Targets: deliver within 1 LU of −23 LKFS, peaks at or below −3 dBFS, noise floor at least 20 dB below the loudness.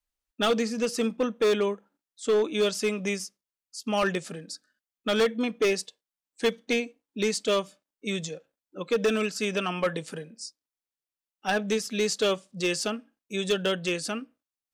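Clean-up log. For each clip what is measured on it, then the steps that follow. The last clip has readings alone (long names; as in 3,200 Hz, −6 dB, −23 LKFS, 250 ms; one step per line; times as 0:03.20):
share of clipped samples 1.3%; peaks flattened at −18.5 dBFS; integrated loudness −28.0 LKFS; sample peak −18.5 dBFS; target loudness −23.0 LKFS
→ clipped peaks rebuilt −18.5 dBFS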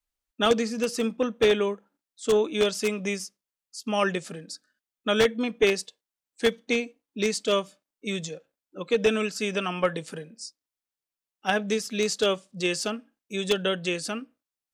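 share of clipped samples 0.0%; integrated loudness −26.5 LKFS; sample peak −9.5 dBFS; target loudness −23.0 LKFS
→ level +3.5 dB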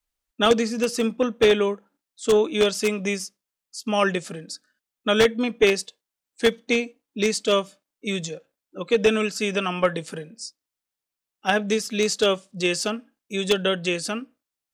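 integrated loudness −23.0 LKFS; sample peak −6.0 dBFS; background noise floor −87 dBFS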